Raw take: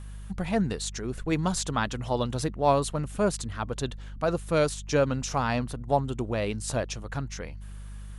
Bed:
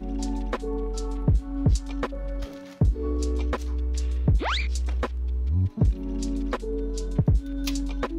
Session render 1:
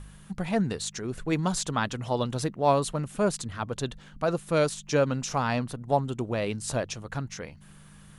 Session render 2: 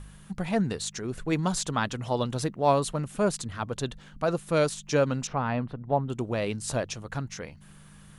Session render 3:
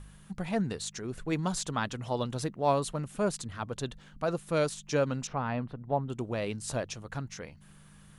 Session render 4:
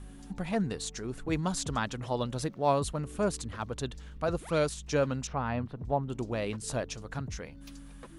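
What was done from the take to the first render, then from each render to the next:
hum removal 50 Hz, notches 2
0:05.27–0:06.10: high-frequency loss of the air 400 metres
level −4 dB
mix in bed −20.5 dB

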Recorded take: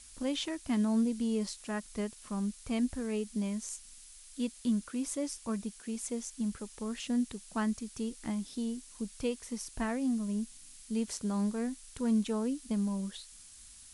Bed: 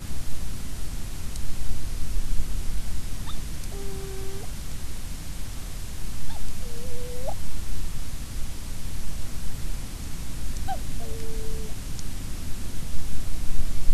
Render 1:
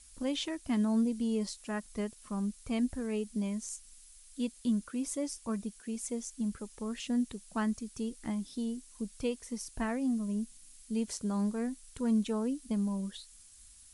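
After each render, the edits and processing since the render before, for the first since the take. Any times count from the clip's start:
broadband denoise 6 dB, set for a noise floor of −54 dBFS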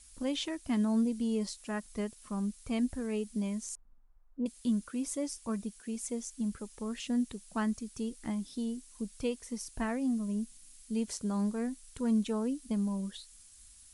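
0:03.75–0:04.46: low-pass filter 1,100 Hz 24 dB per octave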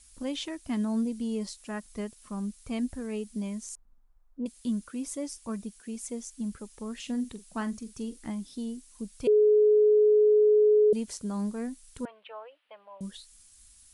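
0:06.95–0:08.21: double-tracking delay 44 ms −13 dB
0:09.27–0:10.93: beep over 423 Hz −17 dBFS
0:12.05–0:13.01: elliptic band-pass filter 580–3,000 Hz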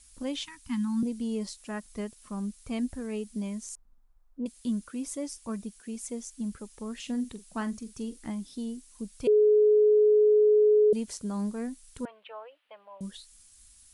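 0:00.43–0:01.03: elliptic band-stop filter 250–910 Hz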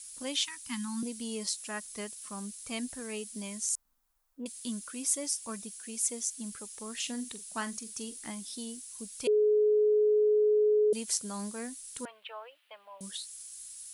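spectral tilt +3.5 dB per octave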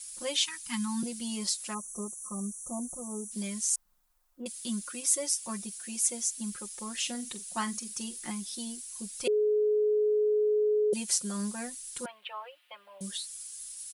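0:01.73–0:03.31: time-frequency box erased 1,300–5,600 Hz
comb filter 5.6 ms, depth 100%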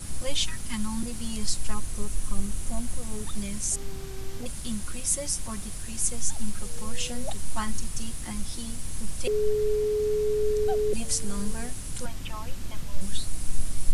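mix in bed −3.5 dB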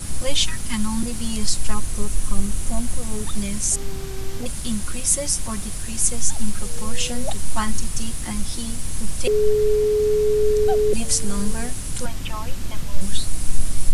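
level +7 dB
brickwall limiter −3 dBFS, peak gain reduction 2.5 dB

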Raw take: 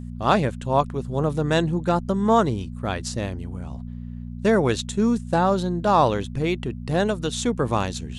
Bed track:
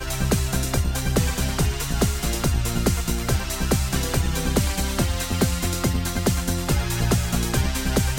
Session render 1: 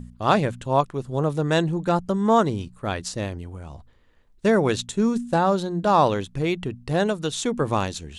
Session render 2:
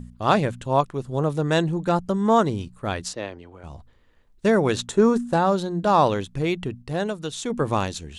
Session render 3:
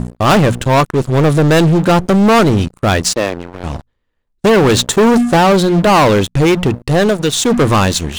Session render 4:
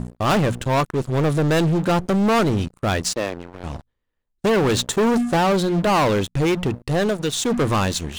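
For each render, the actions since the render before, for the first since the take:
hum removal 60 Hz, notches 4
0:03.13–0:03.64: three-way crossover with the lows and the highs turned down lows −14 dB, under 290 Hz, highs −23 dB, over 4,900 Hz; 0:04.76–0:05.33: flat-topped bell 720 Hz +9 dB 2.8 octaves; 0:06.82–0:07.50: clip gain −4 dB
leveller curve on the samples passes 5
level −8.5 dB

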